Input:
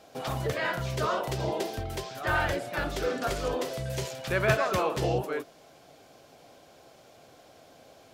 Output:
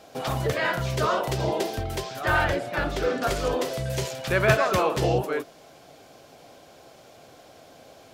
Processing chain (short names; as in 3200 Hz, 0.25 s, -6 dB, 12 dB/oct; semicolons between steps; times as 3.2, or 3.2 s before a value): 2.44–3.23 bell 13000 Hz -7 dB 1.8 oct; gain +4.5 dB